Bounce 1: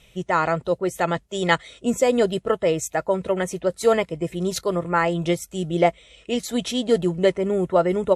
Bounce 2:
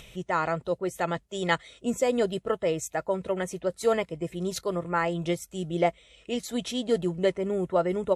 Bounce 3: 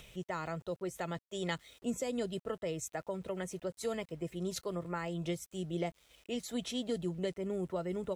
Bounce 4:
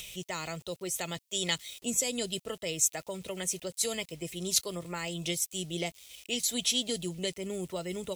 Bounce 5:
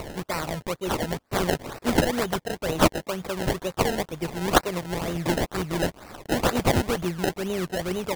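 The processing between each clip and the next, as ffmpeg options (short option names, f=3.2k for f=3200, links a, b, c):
-af "acompressor=mode=upward:threshold=-33dB:ratio=2.5,volume=-6dB"
-filter_complex "[0:a]acrossover=split=280|3000[a][b][c];[b]acompressor=threshold=-31dB:ratio=4[d];[a][d][c]amix=inputs=3:normalize=0,aeval=exprs='val(0)*gte(abs(val(0)),0.002)':c=same,volume=-6dB"
-af "aexciter=amount=3.4:drive=7.8:freq=2.2k"
-af "acrusher=samples=26:mix=1:aa=0.000001:lfo=1:lforange=26:lforate=2.1,volume=8dB"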